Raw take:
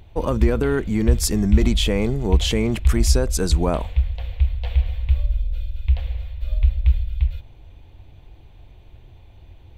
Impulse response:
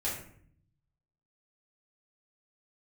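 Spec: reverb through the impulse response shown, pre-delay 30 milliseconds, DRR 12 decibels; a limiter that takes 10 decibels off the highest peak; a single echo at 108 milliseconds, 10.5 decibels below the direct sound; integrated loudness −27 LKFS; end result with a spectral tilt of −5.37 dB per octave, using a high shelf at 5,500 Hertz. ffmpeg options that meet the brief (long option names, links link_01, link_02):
-filter_complex "[0:a]highshelf=frequency=5500:gain=3.5,alimiter=limit=-13dB:level=0:latency=1,aecho=1:1:108:0.299,asplit=2[link_01][link_02];[1:a]atrim=start_sample=2205,adelay=30[link_03];[link_02][link_03]afir=irnorm=-1:irlink=0,volume=-17dB[link_04];[link_01][link_04]amix=inputs=2:normalize=0,volume=-3dB"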